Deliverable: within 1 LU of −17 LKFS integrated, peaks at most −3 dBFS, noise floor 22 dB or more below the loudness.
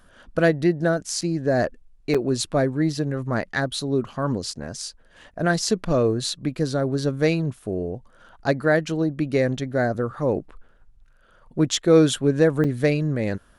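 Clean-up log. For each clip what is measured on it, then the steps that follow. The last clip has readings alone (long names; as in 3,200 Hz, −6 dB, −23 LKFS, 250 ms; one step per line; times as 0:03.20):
number of dropouts 3; longest dropout 5.9 ms; integrated loudness −23.0 LKFS; sample peak −4.5 dBFS; target loudness −17.0 LKFS
→ repair the gap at 0:01.21/0:02.14/0:12.64, 5.9 ms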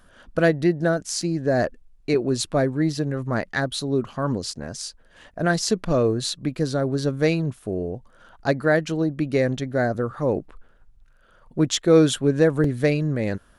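number of dropouts 0; integrated loudness −23.0 LKFS; sample peak −4.5 dBFS; target loudness −17.0 LKFS
→ level +6 dB
brickwall limiter −3 dBFS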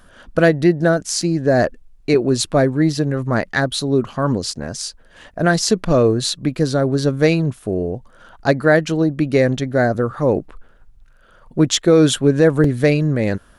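integrated loudness −17.5 LKFS; sample peak −3.0 dBFS; background noise floor −49 dBFS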